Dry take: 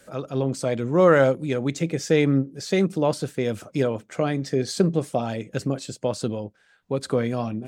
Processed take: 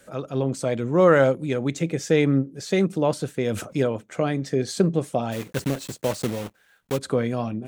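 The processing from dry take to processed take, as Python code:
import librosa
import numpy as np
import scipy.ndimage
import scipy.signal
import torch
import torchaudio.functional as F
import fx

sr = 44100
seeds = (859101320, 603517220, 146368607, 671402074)

y = fx.block_float(x, sr, bits=3, at=(5.31, 6.97), fade=0.02)
y = fx.peak_eq(y, sr, hz=4900.0, db=-4.0, octaves=0.32)
y = fx.sustainer(y, sr, db_per_s=93.0, at=(3.43, 3.87))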